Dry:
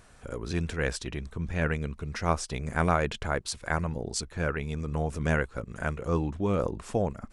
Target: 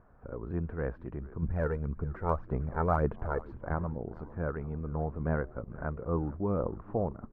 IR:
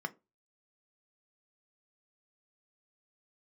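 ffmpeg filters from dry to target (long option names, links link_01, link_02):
-filter_complex "[0:a]lowpass=frequency=1300:width=0.5412,lowpass=frequency=1300:width=1.3066,asettb=1/sr,asplit=3[link_01][link_02][link_03];[link_01]atrim=end=1.424[link_04];[link_02]atrim=start=1.42:end=3.74,asetpts=PTS-STARTPTS,afade=type=in:duration=0.004:curve=qsin,afade=type=out:start_time=2.316:duration=0.004:curve=qsin,aphaser=in_gain=1:out_gain=1:delay=2.3:decay=0.51:speed=1.8:type=sinusoidal[link_05];[link_03]atrim=start=3.736[link_06];[link_04][link_05]acrossfade=duration=0.004:curve1=hsin:curve2=qsin[link_07];[link_07][link_06]acrossfade=duration=0.004:curve1=qsin:curve2=hsin,asplit=7[link_08][link_09][link_10][link_11][link_12][link_13][link_14];[link_09]adelay=451,afreqshift=-100,volume=-19dB[link_15];[link_10]adelay=902,afreqshift=-200,volume=-22.9dB[link_16];[link_11]adelay=1353,afreqshift=-300,volume=-26.8dB[link_17];[link_12]adelay=1804,afreqshift=-400,volume=-30.6dB[link_18];[link_13]adelay=2255,afreqshift=-500,volume=-34.5dB[link_19];[link_14]adelay=2706,afreqshift=-600,volume=-38.4dB[link_20];[link_08][link_15][link_16][link_17][link_18][link_19][link_20]amix=inputs=7:normalize=0,volume=-3.5dB"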